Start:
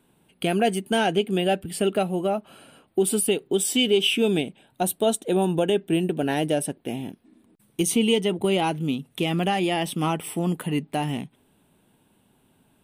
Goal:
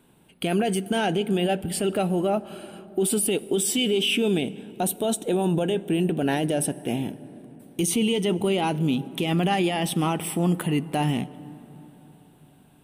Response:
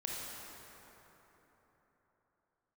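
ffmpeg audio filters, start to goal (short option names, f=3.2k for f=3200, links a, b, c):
-filter_complex "[0:a]alimiter=limit=-19.5dB:level=0:latency=1:release=17,asplit=2[a][b];[1:a]atrim=start_sample=2205,lowshelf=f=380:g=9[c];[b][c]afir=irnorm=-1:irlink=0,volume=-19.5dB[d];[a][d]amix=inputs=2:normalize=0,volume=3dB"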